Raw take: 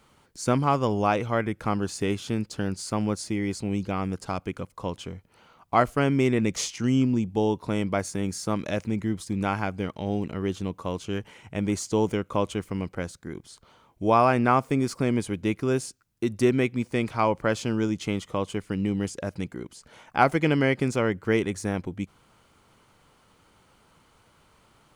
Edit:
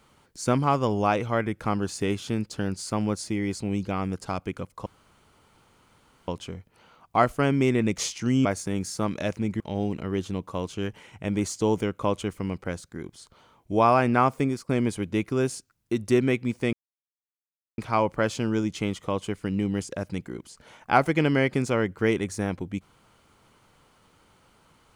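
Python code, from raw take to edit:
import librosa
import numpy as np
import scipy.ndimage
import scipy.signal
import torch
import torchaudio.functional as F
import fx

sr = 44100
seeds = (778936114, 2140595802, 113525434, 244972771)

y = fx.edit(x, sr, fx.insert_room_tone(at_s=4.86, length_s=1.42),
    fx.cut(start_s=7.03, length_s=0.9),
    fx.cut(start_s=9.08, length_s=0.83),
    fx.fade_out_to(start_s=14.74, length_s=0.26, floor_db=-16.5),
    fx.insert_silence(at_s=17.04, length_s=1.05), tone=tone)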